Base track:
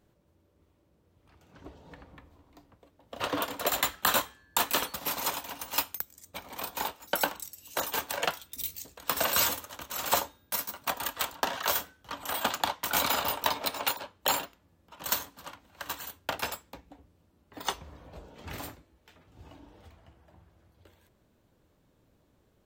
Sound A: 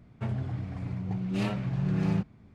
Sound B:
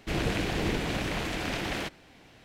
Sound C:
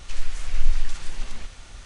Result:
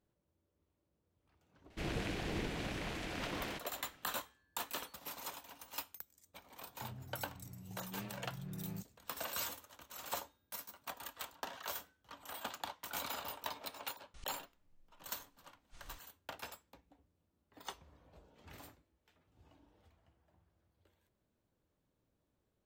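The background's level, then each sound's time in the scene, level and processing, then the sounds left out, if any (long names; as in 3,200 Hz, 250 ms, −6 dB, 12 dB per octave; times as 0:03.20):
base track −14.5 dB
0:01.70: mix in B −10 dB
0:06.60: mix in A −18 dB
0:14.14: mix in C −13.5 dB + gate with flip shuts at −23 dBFS, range −39 dB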